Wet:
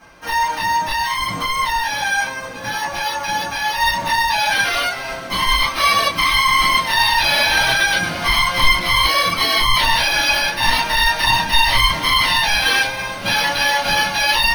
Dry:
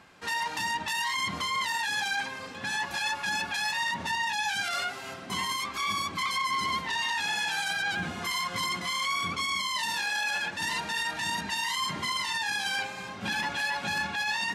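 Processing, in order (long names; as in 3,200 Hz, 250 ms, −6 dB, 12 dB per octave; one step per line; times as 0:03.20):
high-shelf EQ 2,900 Hz −5.5 dB, from 0:03.80 +3.5 dB, from 0:05.47 +8.5 dB
decimation without filtering 6×
convolution reverb, pre-delay 4 ms, DRR −8.5 dB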